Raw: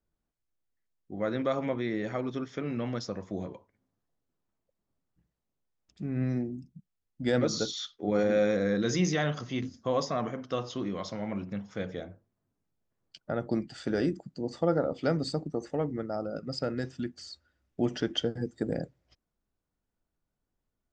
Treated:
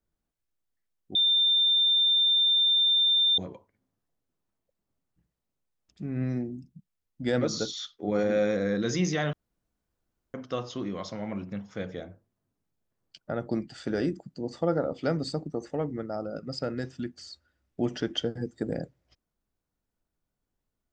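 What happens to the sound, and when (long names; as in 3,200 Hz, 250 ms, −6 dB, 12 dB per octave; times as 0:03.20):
0:01.15–0:03.38: beep over 3,590 Hz −19.5 dBFS
0:09.33–0:10.34: fill with room tone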